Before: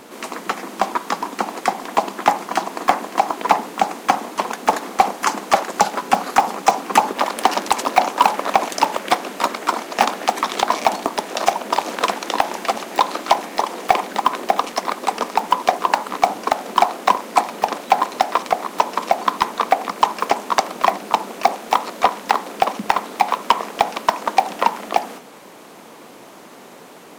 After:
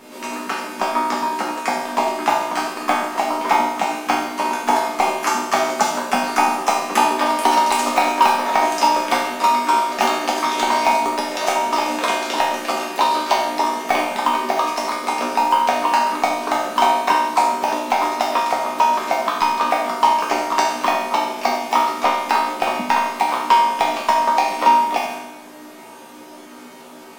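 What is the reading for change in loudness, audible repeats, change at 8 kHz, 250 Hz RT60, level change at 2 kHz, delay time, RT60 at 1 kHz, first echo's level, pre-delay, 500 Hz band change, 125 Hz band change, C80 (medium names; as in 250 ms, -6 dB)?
+1.5 dB, no echo, +1.5 dB, 0.85 s, +2.0 dB, no echo, 0.85 s, no echo, 3 ms, +0.5 dB, no reading, 4.5 dB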